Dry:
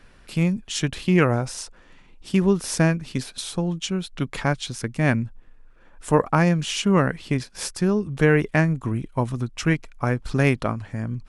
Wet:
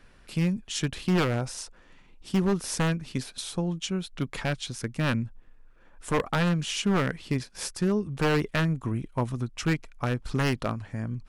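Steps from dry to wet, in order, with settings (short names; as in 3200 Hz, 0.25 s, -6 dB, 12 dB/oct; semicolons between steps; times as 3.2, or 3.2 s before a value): wavefolder -13 dBFS; gain -4 dB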